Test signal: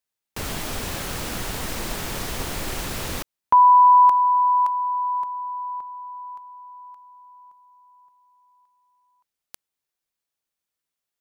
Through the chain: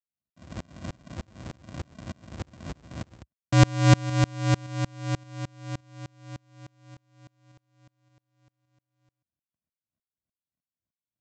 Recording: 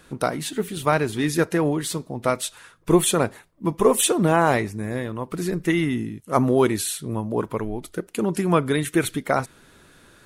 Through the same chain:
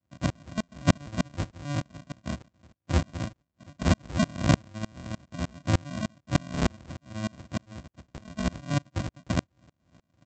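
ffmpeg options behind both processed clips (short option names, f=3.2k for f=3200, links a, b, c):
-af "aresample=16000,acrusher=samples=37:mix=1:aa=0.000001,aresample=44100,highpass=f=64:w=0.5412,highpass=f=64:w=1.3066,aeval=exprs='val(0)*pow(10,-32*if(lt(mod(-3.3*n/s,1),2*abs(-3.3)/1000),1-mod(-3.3*n/s,1)/(2*abs(-3.3)/1000),(mod(-3.3*n/s,1)-2*abs(-3.3)/1000)/(1-2*abs(-3.3)/1000))/20)':c=same,volume=1.5dB"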